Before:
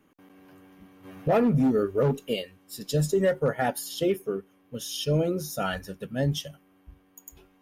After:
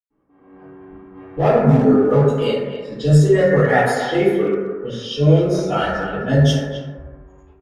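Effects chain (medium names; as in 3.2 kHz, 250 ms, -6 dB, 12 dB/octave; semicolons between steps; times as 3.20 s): level-controlled noise filter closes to 1.1 kHz, open at -24 dBFS; treble shelf 4.4 kHz +6.5 dB; reverberation RT60 1.3 s, pre-delay 98 ms; level rider gain up to 15 dB; 3.50–5.07 s: peaking EQ 1.9 kHz +7.5 dB 0.41 oct; speakerphone echo 260 ms, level -10 dB; trim -1 dB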